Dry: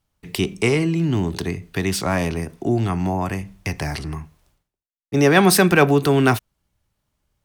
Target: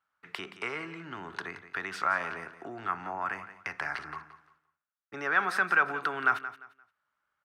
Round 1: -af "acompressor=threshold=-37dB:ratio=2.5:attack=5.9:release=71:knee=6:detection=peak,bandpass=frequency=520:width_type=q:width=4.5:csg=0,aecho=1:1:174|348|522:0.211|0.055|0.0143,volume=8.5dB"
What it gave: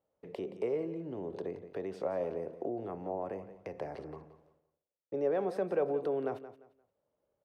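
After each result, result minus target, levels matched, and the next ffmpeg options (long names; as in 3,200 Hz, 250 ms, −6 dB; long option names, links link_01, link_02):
500 Hz band +14.0 dB; downward compressor: peak gain reduction +7 dB
-af "acompressor=threshold=-37dB:ratio=2.5:attack=5.9:release=71:knee=6:detection=peak,bandpass=frequency=1400:width_type=q:width=4.5:csg=0,aecho=1:1:174|348|522:0.211|0.055|0.0143,volume=8.5dB"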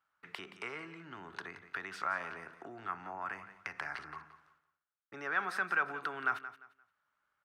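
downward compressor: peak gain reduction +7 dB
-af "acompressor=threshold=-25dB:ratio=2.5:attack=5.9:release=71:knee=6:detection=peak,bandpass=frequency=1400:width_type=q:width=4.5:csg=0,aecho=1:1:174|348|522:0.211|0.055|0.0143,volume=8.5dB"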